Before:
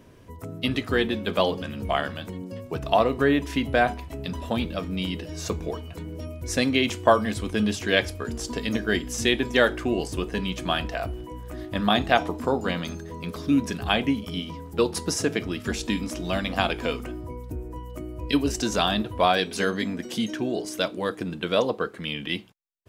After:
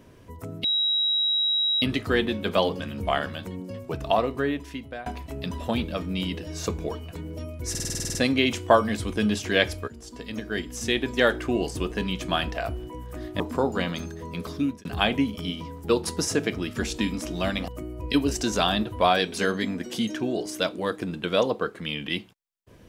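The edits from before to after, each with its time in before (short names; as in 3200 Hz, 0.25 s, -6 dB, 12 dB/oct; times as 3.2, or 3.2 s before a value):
0.64 add tone 3850 Hz -20.5 dBFS 1.18 s
2.65–3.88 fade out, to -21 dB
6.52 stutter 0.05 s, 10 plays
8.25–9.86 fade in linear, from -14 dB
11.77–12.29 cut
13.39–13.74 fade out
16.57–17.87 cut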